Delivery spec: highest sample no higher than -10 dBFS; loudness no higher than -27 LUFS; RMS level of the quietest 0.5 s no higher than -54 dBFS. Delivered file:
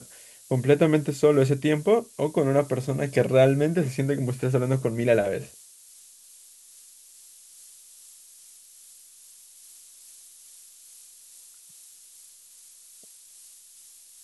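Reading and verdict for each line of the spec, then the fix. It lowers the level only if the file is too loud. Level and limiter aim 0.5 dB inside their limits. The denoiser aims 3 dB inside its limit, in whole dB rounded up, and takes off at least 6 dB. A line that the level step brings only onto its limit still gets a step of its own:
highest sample -6.5 dBFS: fail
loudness -23.5 LUFS: fail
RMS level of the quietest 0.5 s -51 dBFS: fail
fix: trim -4 dB

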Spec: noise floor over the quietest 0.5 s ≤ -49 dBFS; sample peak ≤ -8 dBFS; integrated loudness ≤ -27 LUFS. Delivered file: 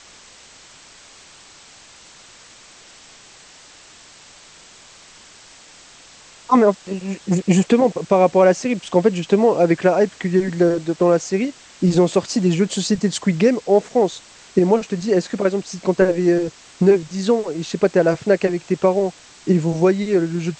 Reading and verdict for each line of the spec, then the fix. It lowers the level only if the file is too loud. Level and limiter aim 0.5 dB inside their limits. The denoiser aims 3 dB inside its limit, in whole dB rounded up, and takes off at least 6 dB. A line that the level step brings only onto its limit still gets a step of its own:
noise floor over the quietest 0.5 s -45 dBFS: fail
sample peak -3.0 dBFS: fail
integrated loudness -18.5 LUFS: fail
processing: trim -9 dB

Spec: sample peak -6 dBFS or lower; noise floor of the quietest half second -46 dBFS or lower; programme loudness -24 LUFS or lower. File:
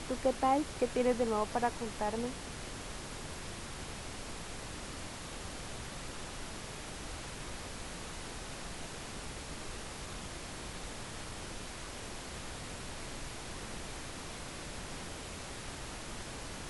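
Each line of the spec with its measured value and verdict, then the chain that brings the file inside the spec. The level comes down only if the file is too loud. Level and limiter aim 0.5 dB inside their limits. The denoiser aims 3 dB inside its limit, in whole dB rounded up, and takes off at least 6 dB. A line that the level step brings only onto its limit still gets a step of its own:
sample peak -18.5 dBFS: pass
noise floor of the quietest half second -44 dBFS: fail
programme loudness -39.5 LUFS: pass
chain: noise reduction 6 dB, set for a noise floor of -44 dBFS

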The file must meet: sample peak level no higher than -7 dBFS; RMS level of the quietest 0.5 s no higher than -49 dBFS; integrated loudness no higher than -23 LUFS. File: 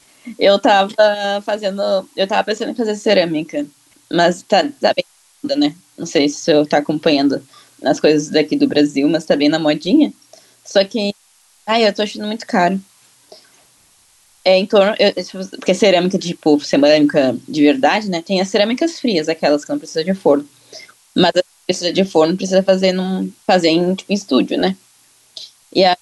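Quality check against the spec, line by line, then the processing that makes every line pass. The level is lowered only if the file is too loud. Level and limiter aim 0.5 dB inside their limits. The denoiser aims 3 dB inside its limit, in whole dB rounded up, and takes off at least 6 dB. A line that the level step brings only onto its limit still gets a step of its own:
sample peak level -1.5 dBFS: fail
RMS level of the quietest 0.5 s -53 dBFS: pass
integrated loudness -16.0 LUFS: fail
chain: trim -7.5 dB

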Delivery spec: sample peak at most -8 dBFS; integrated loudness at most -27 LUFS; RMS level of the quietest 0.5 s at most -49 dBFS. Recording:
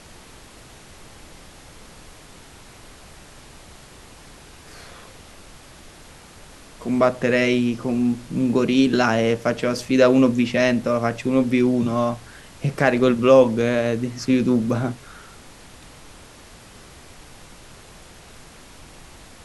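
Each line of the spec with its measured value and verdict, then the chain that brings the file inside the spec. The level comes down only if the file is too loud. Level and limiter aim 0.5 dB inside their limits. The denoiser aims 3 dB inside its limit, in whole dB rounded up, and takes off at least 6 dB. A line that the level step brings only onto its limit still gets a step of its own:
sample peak -2.0 dBFS: fail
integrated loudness -19.5 LUFS: fail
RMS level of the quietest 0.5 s -45 dBFS: fail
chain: trim -8 dB

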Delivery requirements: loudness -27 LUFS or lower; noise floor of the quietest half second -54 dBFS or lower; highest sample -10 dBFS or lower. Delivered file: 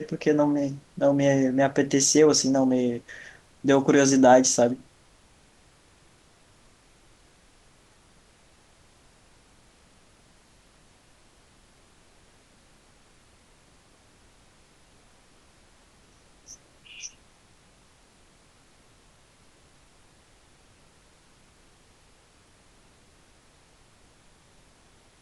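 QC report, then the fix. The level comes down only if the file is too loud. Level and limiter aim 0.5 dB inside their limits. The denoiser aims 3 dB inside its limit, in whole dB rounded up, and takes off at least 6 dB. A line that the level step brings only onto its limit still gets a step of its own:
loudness -21.5 LUFS: fail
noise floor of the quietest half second -58 dBFS: pass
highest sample -5.5 dBFS: fail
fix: trim -6 dB

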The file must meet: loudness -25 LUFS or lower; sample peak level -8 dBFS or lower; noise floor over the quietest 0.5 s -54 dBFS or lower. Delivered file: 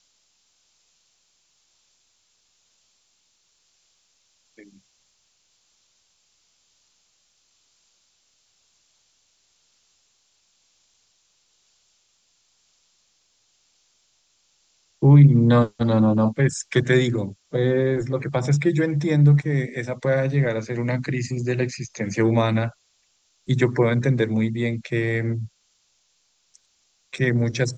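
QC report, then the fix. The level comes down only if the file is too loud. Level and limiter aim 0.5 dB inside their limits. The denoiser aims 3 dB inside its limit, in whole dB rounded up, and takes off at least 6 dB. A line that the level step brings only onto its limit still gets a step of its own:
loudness -21.0 LUFS: fail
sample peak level -3.5 dBFS: fail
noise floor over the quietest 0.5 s -67 dBFS: pass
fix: trim -4.5 dB; peak limiter -8.5 dBFS

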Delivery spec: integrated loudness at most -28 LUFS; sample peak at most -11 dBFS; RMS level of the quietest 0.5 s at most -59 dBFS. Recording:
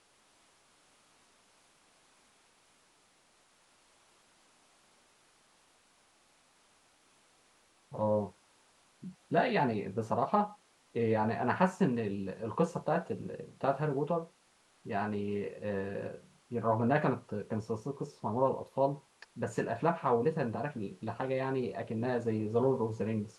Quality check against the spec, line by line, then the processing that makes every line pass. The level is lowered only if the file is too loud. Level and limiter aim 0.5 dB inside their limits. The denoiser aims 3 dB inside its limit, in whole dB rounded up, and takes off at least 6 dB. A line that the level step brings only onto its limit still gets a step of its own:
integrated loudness -33.5 LUFS: pass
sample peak -13.0 dBFS: pass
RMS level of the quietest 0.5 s -68 dBFS: pass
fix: none needed

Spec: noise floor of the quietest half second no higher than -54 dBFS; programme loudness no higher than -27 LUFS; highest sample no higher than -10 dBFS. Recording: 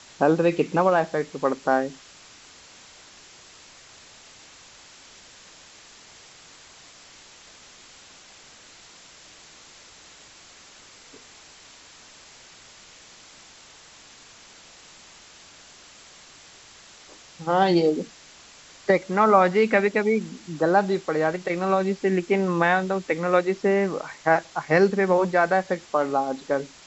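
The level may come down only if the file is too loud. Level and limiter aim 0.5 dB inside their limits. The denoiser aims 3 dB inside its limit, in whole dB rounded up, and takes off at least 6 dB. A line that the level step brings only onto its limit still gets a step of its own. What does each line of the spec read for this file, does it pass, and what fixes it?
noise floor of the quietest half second -49 dBFS: fail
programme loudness -22.5 LUFS: fail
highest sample -4.5 dBFS: fail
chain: noise reduction 6 dB, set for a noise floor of -49 dBFS; trim -5 dB; peak limiter -10.5 dBFS

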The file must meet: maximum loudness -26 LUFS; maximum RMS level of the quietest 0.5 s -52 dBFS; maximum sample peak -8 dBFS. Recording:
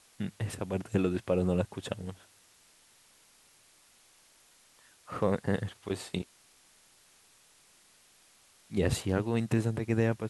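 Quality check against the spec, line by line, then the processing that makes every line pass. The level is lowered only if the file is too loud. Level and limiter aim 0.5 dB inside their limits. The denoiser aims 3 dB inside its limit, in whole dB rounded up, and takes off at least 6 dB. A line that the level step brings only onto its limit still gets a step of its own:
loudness -32.0 LUFS: pass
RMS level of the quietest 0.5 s -62 dBFS: pass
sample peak -13.5 dBFS: pass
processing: none needed

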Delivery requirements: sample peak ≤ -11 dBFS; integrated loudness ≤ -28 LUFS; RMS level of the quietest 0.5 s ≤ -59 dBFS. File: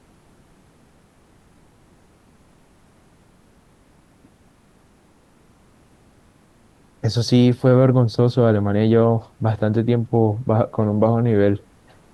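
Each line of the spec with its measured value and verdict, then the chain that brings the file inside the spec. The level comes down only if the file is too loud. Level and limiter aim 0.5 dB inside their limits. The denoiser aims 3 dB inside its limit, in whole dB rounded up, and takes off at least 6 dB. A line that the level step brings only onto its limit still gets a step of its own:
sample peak -4.0 dBFS: fail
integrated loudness -18.0 LUFS: fail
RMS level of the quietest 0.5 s -54 dBFS: fail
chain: trim -10.5 dB

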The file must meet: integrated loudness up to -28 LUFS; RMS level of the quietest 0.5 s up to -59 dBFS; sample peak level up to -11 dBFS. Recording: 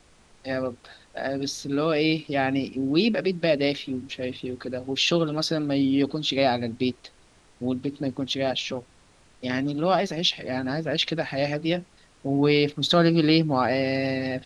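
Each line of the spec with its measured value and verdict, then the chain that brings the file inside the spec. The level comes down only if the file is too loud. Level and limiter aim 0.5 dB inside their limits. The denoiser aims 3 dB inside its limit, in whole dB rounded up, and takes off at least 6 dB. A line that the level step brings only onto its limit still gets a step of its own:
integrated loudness -25.0 LUFS: fail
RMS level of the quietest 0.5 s -57 dBFS: fail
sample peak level -8.0 dBFS: fail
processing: trim -3.5 dB

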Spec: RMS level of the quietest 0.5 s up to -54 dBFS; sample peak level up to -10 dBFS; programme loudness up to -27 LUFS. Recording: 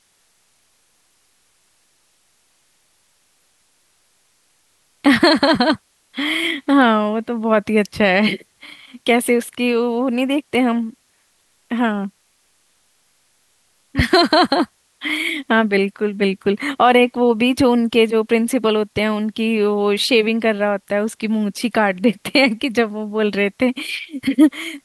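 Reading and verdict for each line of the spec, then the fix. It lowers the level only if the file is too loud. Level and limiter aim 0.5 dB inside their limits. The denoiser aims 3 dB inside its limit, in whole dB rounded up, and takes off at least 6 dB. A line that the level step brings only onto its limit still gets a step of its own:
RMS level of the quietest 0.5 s -61 dBFS: pass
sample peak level -3.0 dBFS: fail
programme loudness -17.5 LUFS: fail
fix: trim -10 dB

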